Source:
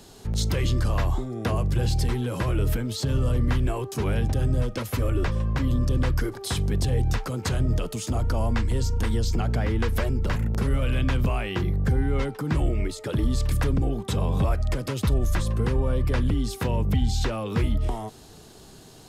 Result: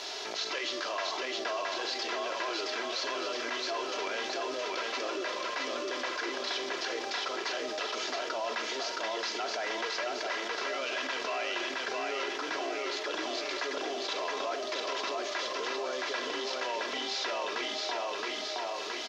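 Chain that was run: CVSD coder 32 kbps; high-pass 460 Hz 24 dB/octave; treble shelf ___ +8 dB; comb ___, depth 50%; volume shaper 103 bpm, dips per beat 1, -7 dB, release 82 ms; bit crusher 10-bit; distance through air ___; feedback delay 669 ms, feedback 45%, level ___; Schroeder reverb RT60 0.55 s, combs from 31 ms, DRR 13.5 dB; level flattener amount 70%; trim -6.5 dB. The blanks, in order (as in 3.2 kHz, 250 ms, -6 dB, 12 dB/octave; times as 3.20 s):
2.5 kHz, 3 ms, 55 m, -3.5 dB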